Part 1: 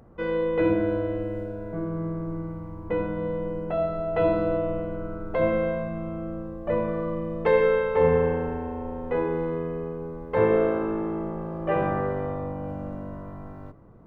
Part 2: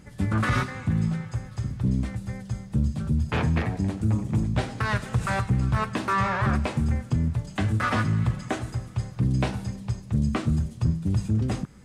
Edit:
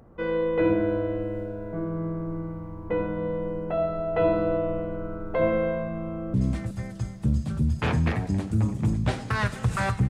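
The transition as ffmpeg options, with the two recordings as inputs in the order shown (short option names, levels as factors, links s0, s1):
-filter_complex "[0:a]apad=whole_dur=10.09,atrim=end=10.09,atrim=end=6.342[s0];[1:a]atrim=start=1.838:end=5.59[s1];[s0][s1]acrossfade=d=0.004:c1=hsin:c2=hsin,asplit=2[s2][s3];[s3]afade=t=in:st=6.03:d=0.01,afade=t=out:st=6.34:d=0.01,aecho=0:1:370|740|1110|1480|1850:0.446684|0.178673|0.0714694|0.0285877|0.0114351[s4];[s2][s4]amix=inputs=2:normalize=0"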